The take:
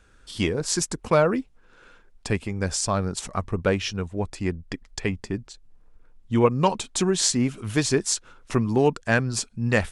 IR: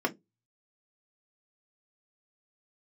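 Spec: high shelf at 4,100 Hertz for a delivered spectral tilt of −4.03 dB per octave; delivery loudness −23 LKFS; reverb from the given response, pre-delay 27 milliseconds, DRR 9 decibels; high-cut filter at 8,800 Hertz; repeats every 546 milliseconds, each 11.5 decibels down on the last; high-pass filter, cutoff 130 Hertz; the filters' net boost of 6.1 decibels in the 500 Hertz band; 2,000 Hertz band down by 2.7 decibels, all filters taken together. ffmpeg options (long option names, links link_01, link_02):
-filter_complex "[0:a]highpass=130,lowpass=8800,equalizer=frequency=500:width_type=o:gain=7.5,equalizer=frequency=2000:width_type=o:gain=-5.5,highshelf=frequency=4100:gain=7,aecho=1:1:546|1092|1638:0.266|0.0718|0.0194,asplit=2[link_01][link_02];[1:a]atrim=start_sample=2205,adelay=27[link_03];[link_02][link_03]afir=irnorm=-1:irlink=0,volume=-18dB[link_04];[link_01][link_04]amix=inputs=2:normalize=0,volume=-2.5dB"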